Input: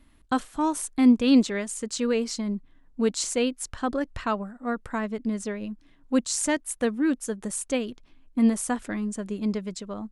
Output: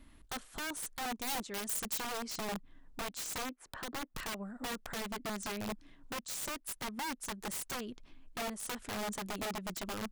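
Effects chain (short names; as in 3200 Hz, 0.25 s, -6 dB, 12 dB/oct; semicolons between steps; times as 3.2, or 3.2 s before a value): 3.38–4.15 three-band isolator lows -17 dB, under 170 Hz, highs -21 dB, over 2300 Hz; compressor 16:1, threshold -34 dBFS, peak gain reduction 21.5 dB; wrapped overs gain 33.5 dB; 1.19–1.98 high shelf 8800 Hz +8 dB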